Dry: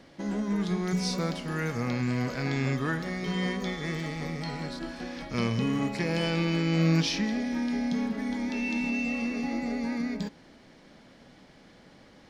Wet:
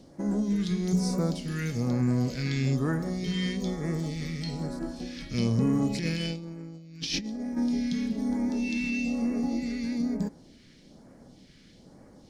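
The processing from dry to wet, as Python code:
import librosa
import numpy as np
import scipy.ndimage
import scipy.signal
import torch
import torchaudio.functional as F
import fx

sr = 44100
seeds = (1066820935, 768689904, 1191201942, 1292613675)

y = fx.phaser_stages(x, sr, stages=2, low_hz=760.0, high_hz=3000.0, hz=1.1, feedback_pct=35)
y = fx.over_compress(y, sr, threshold_db=-32.0, ratio=-0.5, at=(5.89, 7.56), fade=0.02)
y = y * librosa.db_to_amplitude(2.0)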